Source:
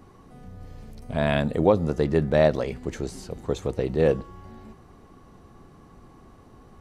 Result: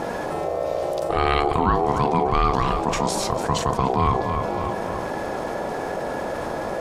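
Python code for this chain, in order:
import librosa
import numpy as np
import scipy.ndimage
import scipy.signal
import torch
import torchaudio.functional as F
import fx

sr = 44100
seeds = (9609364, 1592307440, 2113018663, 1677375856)

y = fx.high_shelf(x, sr, hz=4000.0, db=5.5)
y = fx.doubler(y, sr, ms=40.0, db=-13.5)
y = fx.echo_feedback(y, sr, ms=290, feedback_pct=36, wet_db=-16.5)
y = y * np.sin(2.0 * np.pi * 580.0 * np.arange(len(y)) / sr)
y = fx.high_shelf(y, sr, hz=8100.0, db=-7.0)
y = fx.env_flatten(y, sr, amount_pct=70)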